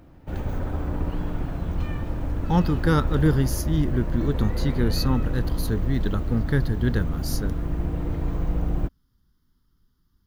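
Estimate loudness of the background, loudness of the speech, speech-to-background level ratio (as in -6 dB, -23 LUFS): -29.5 LUFS, -25.5 LUFS, 4.0 dB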